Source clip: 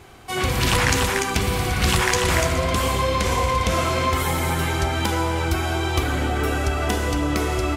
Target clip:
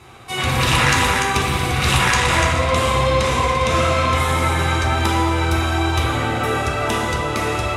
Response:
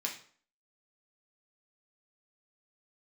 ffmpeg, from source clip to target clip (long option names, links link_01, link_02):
-filter_complex "[0:a]asettb=1/sr,asplit=3[link_01][link_02][link_03];[link_01]atrim=end=2.174[link_04];[link_02]atrim=start=2.17:end=4.83,asetpts=PTS-STARTPTS,afade=type=in:duration=0.004:curve=qsin,afade=type=out:start_time=2.656:duration=0.004:curve=qsin,lowpass=11000[link_05];[link_03]atrim=start=4.826[link_06];[link_04][link_05]acrossfade=duration=0.004:curve1=hsin:curve2=qsin[link_07];[link_07][link_06]acrossfade=duration=0.004:curve1=qsin:curve2=hsin[link_08];[1:a]atrim=start_sample=2205,asetrate=23373,aresample=44100[link_09];[link_08][link_09]afir=irnorm=-1:irlink=0,volume=-2.5dB"